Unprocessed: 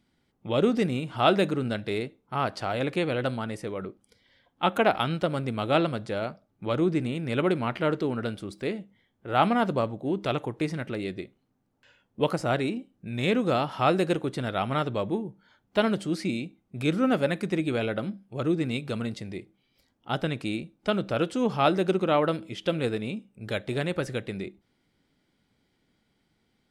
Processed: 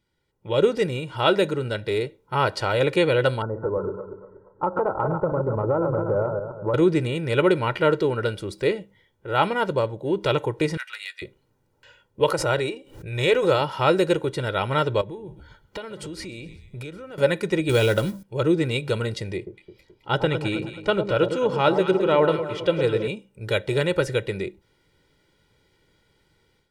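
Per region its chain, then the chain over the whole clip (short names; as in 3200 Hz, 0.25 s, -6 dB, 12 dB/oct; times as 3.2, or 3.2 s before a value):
3.42–6.74 regenerating reverse delay 0.119 s, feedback 55%, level -7 dB + steep low-pass 1300 Hz 48 dB/oct + compressor 5:1, threshold -26 dBFS
10.77–11.22 HPF 1400 Hz 24 dB/oct + hard clip -28.5 dBFS + doubler 14 ms -13 dB
12.22–13.61 bell 210 Hz -13.5 dB 0.48 oct + backwards sustainer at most 78 dB/s
15.01–17.18 frequency-shifting echo 0.127 s, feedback 47%, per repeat -76 Hz, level -21 dB + compressor 16:1, threshold -37 dBFS
17.69–18.23 G.711 law mismatch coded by mu + tone controls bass +5 dB, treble +12 dB
19.36–23.08 high shelf 5800 Hz -8.5 dB + echo with dull and thin repeats by turns 0.107 s, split 1000 Hz, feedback 67%, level -7 dB
whole clip: comb 2.1 ms, depth 69%; AGC gain up to 11.5 dB; gain -5 dB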